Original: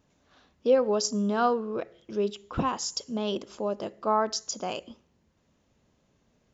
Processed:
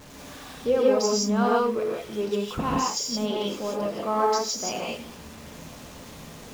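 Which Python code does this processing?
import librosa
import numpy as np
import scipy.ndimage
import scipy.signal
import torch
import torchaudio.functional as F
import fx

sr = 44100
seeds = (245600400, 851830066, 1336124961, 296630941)

y = x + 0.5 * 10.0 ** (-39.5 / 20.0) * np.sign(x)
y = fx.dynamic_eq(y, sr, hz=2300.0, q=5.8, threshold_db=-56.0, ratio=4.0, max_db=4)
y = fx.rev_gated(y, sr, seeds[0], gate_ms=200, shape='rising', drr_db=-3.5)
y = y * 10.0 ** (-2.5 / 20.0)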